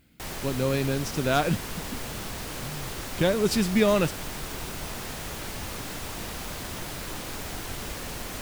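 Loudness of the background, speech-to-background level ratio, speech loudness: −35.0 LKFS, 9.0 dB, −26.0 LKFS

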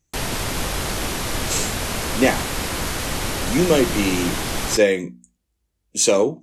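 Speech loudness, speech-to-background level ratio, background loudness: −20.5 LKFS, 4.0 dB, −24.5 LKFS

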